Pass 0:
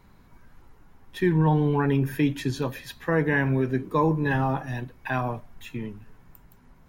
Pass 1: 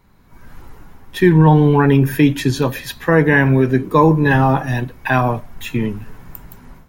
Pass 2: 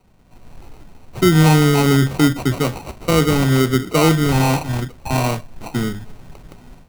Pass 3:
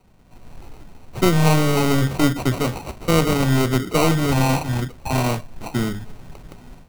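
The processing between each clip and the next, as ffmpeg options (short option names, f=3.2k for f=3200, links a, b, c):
-af "highshelf=f=10k:g=4,dynaudnorm=f=260:g=3:m=15dB"
-filter_complex "[0:a]acrossover=split=110|710|3900[a][b][c][d];[c]asoftclip=type=tanh:threshold=-20dB[e];[a][b][e][d]amix=inputs=4:normalize=0,acrusher=samples=26:mix=1:aa=0.000001,volume=-1.5dB"
-af "aeval=exprs='clip(val(0),-1,0.0944)':c=same"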